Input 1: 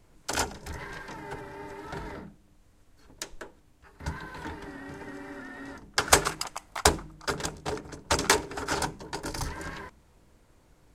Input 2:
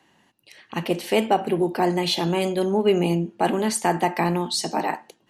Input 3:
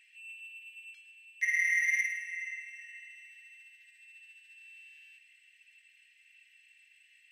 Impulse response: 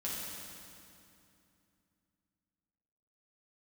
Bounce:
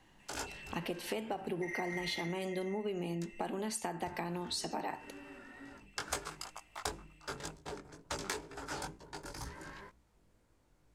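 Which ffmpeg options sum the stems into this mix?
-filter_complex "[0:a]flanger=delay=17:depth=4.3:speed=2.1,volume=-7.5dB[a];[1:a]volume=-5.5dB[b];[2:a]adelay=200,volume=-5dB[c];[b][c]amix=inputs=2:normalize=0,acompressor=threshold=-28dB:ratio=3,volume=0dB[d];[a][d]amix=inputs=2:normalize=0,acompressor=threshold=-36dB:ratio=3"

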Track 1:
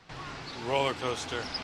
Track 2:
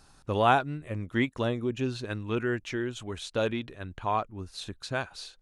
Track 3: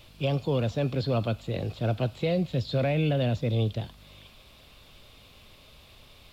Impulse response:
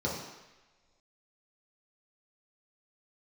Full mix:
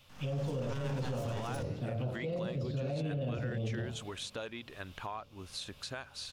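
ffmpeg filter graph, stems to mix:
-filter_complex "[0:a]aeval=exprs='abs(val(0))':c=same,volume=-13dB,asplit=2[a][b];[b]volume=-10dB[c];[1:a]adelay=1000,volume=-2dB[d];[2:a]volume=-7dB,asplit=2[e][f];[f]volume=-17dB[g];[d][e]amix=inputs=2:normalize=0,lowshelf=f=490:g=-9.5,acompressor=threshold=-44dB:ratio=6,volume=0dB[h];[3:a]atrim=start_sample=2205[i];[c][g]amix=inputs=2:normalize=0[j];[j][i]afir=irnorm=-1:irlink=0[k];[a][h][k]amix=inputs=3:normalize=0,dynaudnorm=f=130:g=3:m=5.5dB,alimiter=level_in=4.5dB:limit=-24dB:level=0:latency=1:release=16,volume=-4.5dB"

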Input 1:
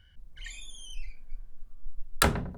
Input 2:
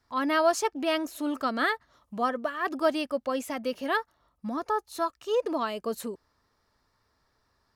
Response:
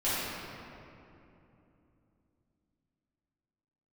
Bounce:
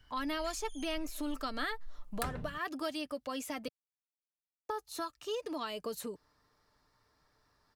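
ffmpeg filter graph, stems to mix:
-filter_complex "[0:a]volume=-4.5dB[a];[1:a]volume=-1dB,asplit=3[b][c][d];[b]atrim=end=3.68,asetpts=PTS-STARTPTS,afade=t=out:st=3.676:d=0.004:c=hsin[e];[c]atrim=start=3.68:end=4.69,asetpts=PTS-STARTPTS,volume=0[f];[d]atrim=start=4.69,asetpts=PTS-STARTPTS,afade=t=in:d=0.004:c=hsin[g];[e][f][g]concat=n=3:v=0:a=1[h];[a][h]amix=inputs=2:normalize=0,aecho=1:1:6.7:0.32,acrossover=split=150|2300[i][j][k];[i]acompressor=threshold=-39dB:ratio=4[l];[j]acompressor=threshold=-38dB:ratio=4[m];[k]acompressor=threshold=-41dB:ratio=4[n];[l][m][n]amix=inputs=3:normalize=0"

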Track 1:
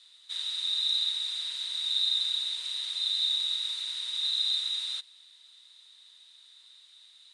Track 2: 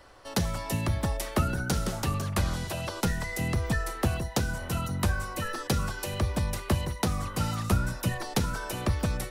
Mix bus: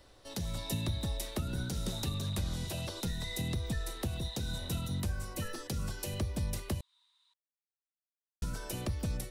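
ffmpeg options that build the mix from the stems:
-filter_complex "[0:a]highpass=f=980:t=q:w=11,volume=-17dB[a];[1:a]equalizer=f=1.2k:w=0.69:g=-10,volume=-2.5dB,asplit=3[b][c][d];[b]atrim=end=6.81,asetpts=PTS-STARTPTS,afade=t=out:st=6.806:d=0.004:c=hsin[e];[c]atrim=start=6.81:end=8.42,asetpts=PTS-STARTPTS,volume=0[f];[d]atrim=start=8.42,asetpts=PTS-STARTPTS,afade=t=in:d=0.004:c=hsin[g];[e][f][g]concat=n=3:v=0:a=1[h];[a][h]amix=inputs=2:normalize=0,alimiter=level_in=0.5dB:limit=-24dB:level=0:latency=1:release=209,volume=-0.5dB"

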